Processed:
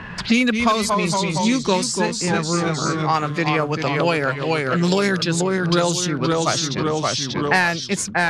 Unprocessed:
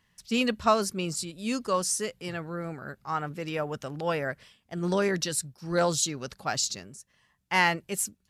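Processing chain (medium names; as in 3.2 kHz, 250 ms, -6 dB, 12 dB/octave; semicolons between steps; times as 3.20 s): in parallel at -4 dB: overload inside the chain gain 16.5 dB; on the sum: formant shift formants -2 st; level-controlled noise filter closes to 1.9 kHz, open at -17.5 dBFS; ever faster or slower copies 189 ms, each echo -1 st, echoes 3, each echo -6 dB; three bands compressed up and down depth 100%; trim +4 dB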